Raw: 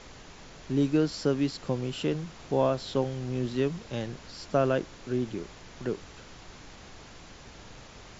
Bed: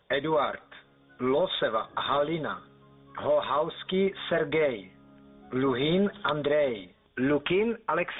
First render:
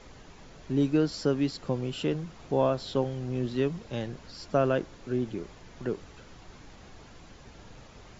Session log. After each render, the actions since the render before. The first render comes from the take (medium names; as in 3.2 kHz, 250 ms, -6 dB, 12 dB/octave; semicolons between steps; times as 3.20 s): noise reduction 6 dB, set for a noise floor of -49 dBFS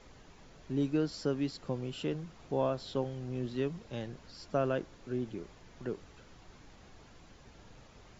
trim -6 dB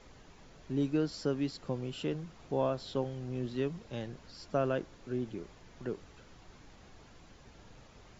no audible change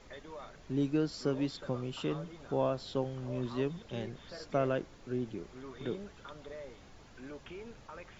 add bed -21.5 dB